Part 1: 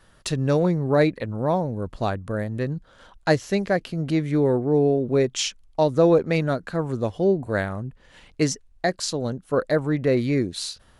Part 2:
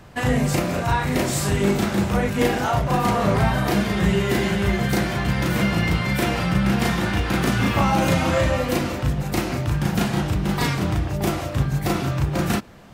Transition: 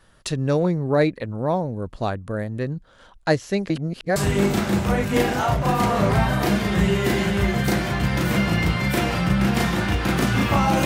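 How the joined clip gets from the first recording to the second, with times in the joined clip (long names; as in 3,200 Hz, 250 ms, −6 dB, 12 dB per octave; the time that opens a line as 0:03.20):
part 1
0:03.70–0:04.16: reverse
0:04.16: continue with part 2 from 0:01.41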